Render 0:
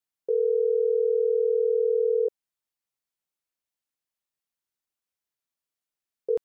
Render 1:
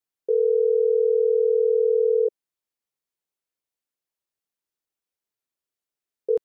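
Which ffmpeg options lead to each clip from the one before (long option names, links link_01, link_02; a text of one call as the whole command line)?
ffmpeg -i in.wav -af "equalizer=frequency=410:width=1.5:gain=5.5,volume=-1.5dB" out.wav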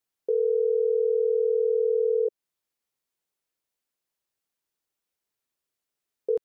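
ffmpeg -i in.wav -af "alimiter=limit=-21dB:level=0:latency=1:release=211,volume=3.5dB" out.wav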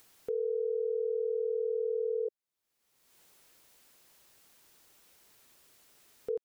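ffmpeg -i in.wav -af "acompressor=mode=upward:threshold=-29dB:ratio=2.5,volume=-8.5dB" out.wav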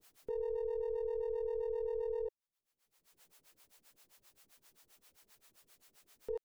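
ffmpeg -i in.wav -filter_complex "[0:a]aeval=exprs='if(lt(val(0),0),0.708*val(0),val(0))':channel_layout=same,acrossover=split=460[link_01][link_02];[link_01]aeval=exprs='val(0)*(1-1/2+1/2*cos(2*PI*7.6*n/s))':channel_layout=same[link_03];[link_02]aeval=exprs='val(0)*(1-1/2-1/2*cos(2*PI*7.6*n/s))':channel_layout=same[link_04];[link_03][link_04]amix=inputs=2:normalize=0,volume=2dB" out.wav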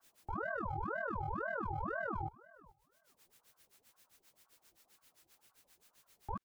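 ffmpeg -i in.wav -filter_complex "[0:a]asplit=2[link_01][link_02];[link_02]adelay=432,lowpass=frequency=3400:poles=1,volume=-22dB,asplit=2[link_03][link_04];[link_04]adelay=432,lowpass=frequency=3400:poles=1,volume=0.17[link_05];[link_01][link_03][link_05]amix=inputs=3:normalize=0,aeval=exprs='val(0)*sin(2*PI*730*n/s+730*0.55/2*sin(2*PI*2*n/s))':channel_layout=same,volume=1dB" out.wav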